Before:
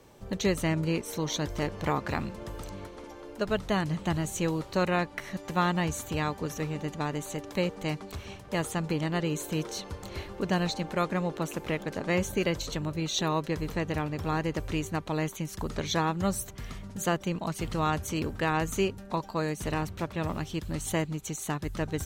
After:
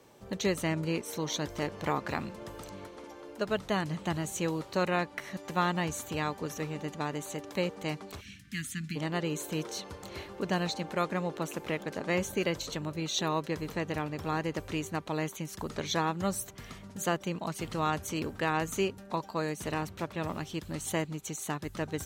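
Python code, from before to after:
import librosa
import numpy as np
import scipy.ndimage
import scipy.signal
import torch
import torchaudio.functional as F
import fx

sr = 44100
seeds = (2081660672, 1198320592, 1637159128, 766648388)

y = fx.cheby1_bandstop(x, sr, low_hz=250.0, high_hz=1700.0, order=3, at=(8.2, 8.95), fade=0.02)
y = fx.highpass(y, sr, hz=160.0, slope=6)
y = y * librosa.db_to_amplitude(-1.5)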